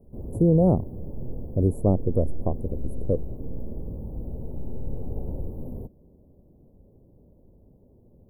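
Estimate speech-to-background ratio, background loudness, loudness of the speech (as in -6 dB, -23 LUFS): 13.0 dB, -37.5 LUFS, -24.5 LUFS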